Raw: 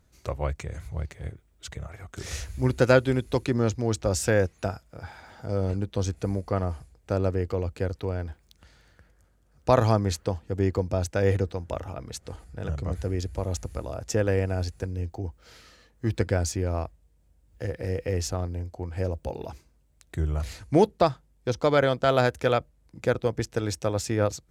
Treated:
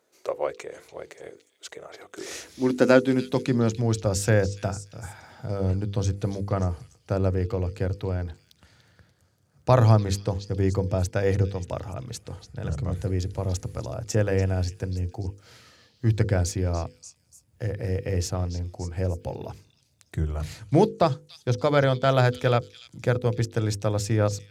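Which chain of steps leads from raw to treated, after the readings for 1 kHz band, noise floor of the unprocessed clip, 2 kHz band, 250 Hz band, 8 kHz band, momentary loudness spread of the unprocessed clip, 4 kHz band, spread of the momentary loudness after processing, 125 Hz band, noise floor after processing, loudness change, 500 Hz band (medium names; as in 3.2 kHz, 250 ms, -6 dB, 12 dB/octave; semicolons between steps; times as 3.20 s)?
0.0 dB, -63 dBFS, 0.0 dB, +2.0 dB, +0.5 dB, 16 LU, +0.5 dB, 17 LU, +3.5 dB, -65 dBFS, +1.5 dB, 0.0 dB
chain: high-pass sweep 420 Hz -> 110 Hz, 1.92–4.12 s; hum notches 50/100/150/200/250/300/350/400/450/500 Hz; repeats whose band climbs or falls 290 ms, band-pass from 4.1 kHz, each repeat 0.7 oct, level -8 dB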